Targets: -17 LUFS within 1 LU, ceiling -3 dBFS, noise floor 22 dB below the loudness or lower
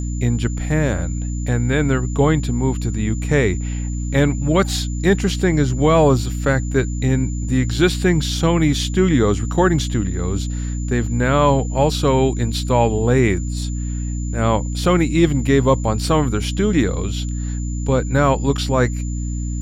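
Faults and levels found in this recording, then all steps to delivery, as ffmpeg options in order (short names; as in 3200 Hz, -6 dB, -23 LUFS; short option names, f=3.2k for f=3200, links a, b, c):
hum 60 Hz; harmonics up to 300 Hz; hum level -21 dBFS; steady tone 7100 Hz; tone level -37 dBFS; loudness -19.0 LUFS; peak -3.0 dBFS; loudness target -17.0 LUFS
-> -af "bandreject=f=60:t=h:w=4,bandreject=f=120:t=h:w=4,bandreject=f=180:t=h:w=4,bandreject=f=240:t=h:w=4,bandreject=f=300:t=h:w=4"
-af "bandreject=f=7.1k:w=30"
-af "volume=2dB,alimiter=limit=-3dB:level=0:latency=1"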